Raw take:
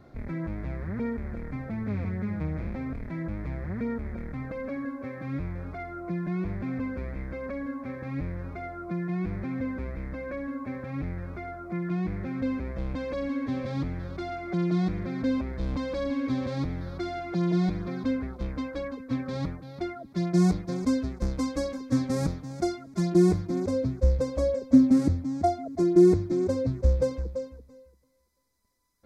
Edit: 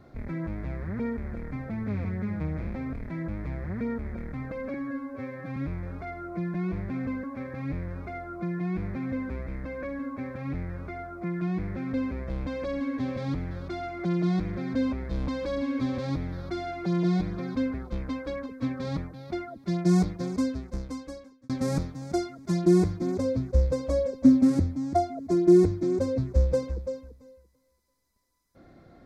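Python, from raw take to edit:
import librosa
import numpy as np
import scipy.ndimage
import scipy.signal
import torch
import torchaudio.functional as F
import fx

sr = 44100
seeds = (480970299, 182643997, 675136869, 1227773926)

y = fx.edit(x, sr, fx.stretch_span(start_s=4.74, length_s=0.55, factor=1.5),
    fx.cut(start_s=6.96, length_s=0.76),
    fx.fade_out_span(start_s=20.67, length_s=1.31), tone=tone)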